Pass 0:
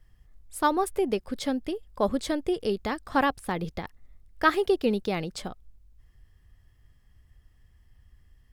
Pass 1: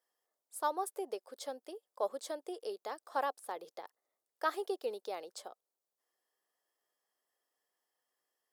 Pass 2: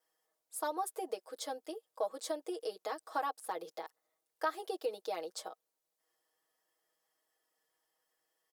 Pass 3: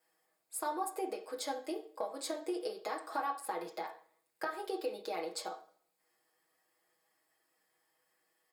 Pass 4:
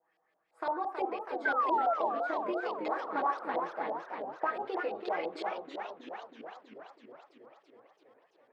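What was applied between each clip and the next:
high-pass filter 480 Hz 24 dB per octave; parametric band 2,300 Hz −12.5 dB 1.6 octaves; level −5.5 dB
comb filter 6.3 ms, depth 97%; downward compressor 2.5 to 1, threshold −34 dBFS, peak gain reduction 9 dB; pitch vibrato 0.62 Hz 5.5 cents; level +1 dB
downward compressor 4 to 1, threshold −39 dBFS, peak gain reduction 10 dB; convolution reverb RT60 0.50 s, pre-delay 3 ms, DRR 2 dB; level +3 dB
sound drawn into the spectrogram fall, 0:01.45–0:01.94, 640–1,600 Hz −33 dBFS; auto-filter low-pass saw up 5.9 Hz 630–3,500 Hz; feedback echo with a swinging delay time 328 ms, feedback 68%, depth 219 cents, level −6 dB

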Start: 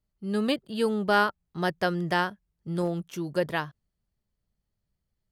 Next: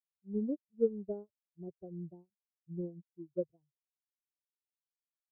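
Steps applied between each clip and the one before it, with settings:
spectral dynamics exaggerated over time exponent 2
Butterworth low-pass 530 Hz 36 dB per octave
expander for the loud parts 2.5 to 1, over −46 dBFS
level +1 dB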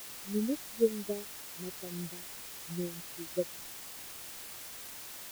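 bit-depth reduction 8 bits, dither triangular
level +2.5 dB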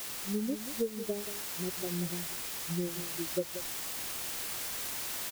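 downward compressor, threshold −36 dBFS, peak gain reduction 14.5 dB
single-tap delay 182 ms −11 dB
speech leveller 2 s
level +6.5 dB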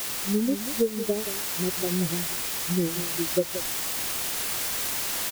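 wow of a warped record 78 rpm, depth 100 cents
level +8.5 dB

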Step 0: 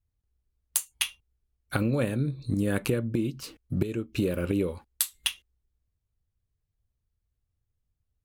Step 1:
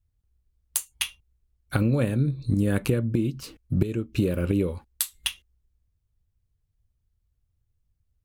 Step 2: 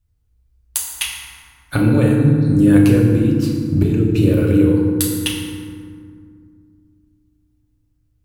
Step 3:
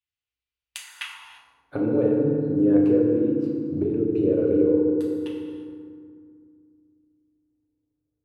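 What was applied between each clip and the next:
low-shelf EQ 200 Hz +7.5 dB
feedback delay network reverb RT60 2.1 s, low-frequency decay 1.55×, high-frequency decay 0.5×, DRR −2 dB; level +4 dB
band-pass filter sweep 2,800 Hz → 450 Hz, 0:00.70–0:01.65; reverb whose tail is shaped and stops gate 370 ms flat, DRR 10 dB

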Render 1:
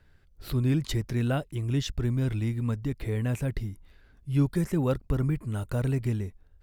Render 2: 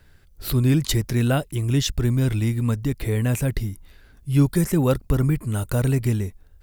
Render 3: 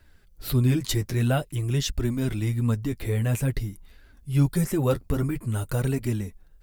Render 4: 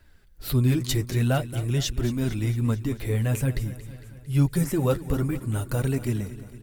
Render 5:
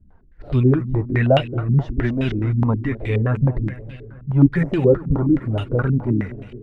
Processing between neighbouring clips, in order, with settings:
high-shelf EQ 6,100 Hz +11 dB; level +6.5 dB
flanger 0.49 Hz, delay 2.9 ms, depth 8.7 ms, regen −21%
repeating echo 227 ms, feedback 60%, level −15 dB
low-pass on a step sequencer 9.5 Hz 200–2,800 Hz; level +4 dB

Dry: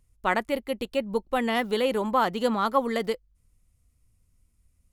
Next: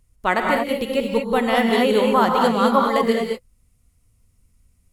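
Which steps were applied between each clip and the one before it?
reverb whose tail is shaped and stops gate 250 ms rising, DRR 0.5 dB
level +4.5 dB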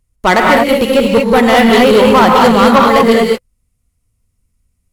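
leveller curve on the samples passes 3
level +2.5 dB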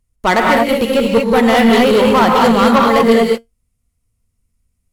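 tuned comb filter 230 Hz, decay 0.16 s, harmonics all, mix 40%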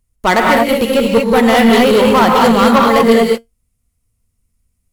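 high-shelf EQ 9,200 Hz +5 dB
level +1 dB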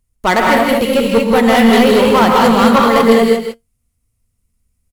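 single-tap delay 162 ms −8 dB
level −1 dB

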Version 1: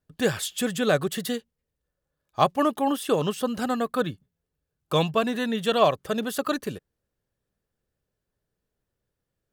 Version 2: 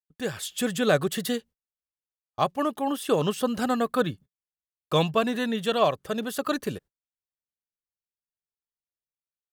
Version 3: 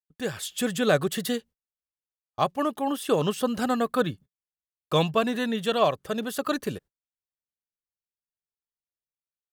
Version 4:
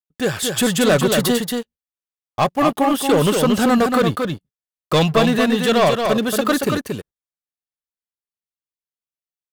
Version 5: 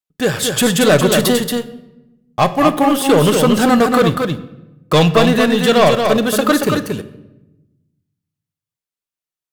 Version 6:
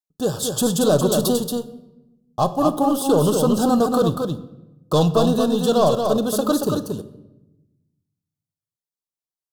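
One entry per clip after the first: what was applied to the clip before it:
noise gate −47 dBFS, range −32 dB; automatic gain control gain up to 11 dB; level −8 dB
no processing that can be heard
leveller curve on the samples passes 3; on a send: single-tap delay 230 ms −5 dB
tape wow and flutter 17 cents; on a send at −11.5 dB: convolution reverb RT60 1.0 s, pre-delay 6 ms; on the sum: level +3.5 dB
Butterworth band-reject 2,100 Hz, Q 0.8; level −5 dB

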